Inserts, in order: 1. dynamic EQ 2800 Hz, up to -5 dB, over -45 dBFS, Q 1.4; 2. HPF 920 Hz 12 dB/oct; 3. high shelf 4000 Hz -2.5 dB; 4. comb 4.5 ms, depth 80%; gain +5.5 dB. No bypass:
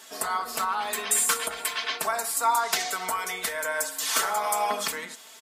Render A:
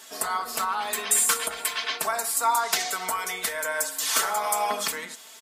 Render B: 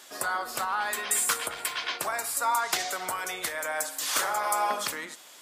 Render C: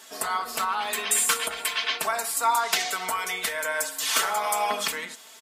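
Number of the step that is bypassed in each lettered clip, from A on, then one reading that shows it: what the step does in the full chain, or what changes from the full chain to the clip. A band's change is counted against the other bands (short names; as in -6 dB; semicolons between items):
3, loudness change +1.0 LU; 4, 2 kHz band +1.5 dB; 1, 4 kHz band +3.0 dB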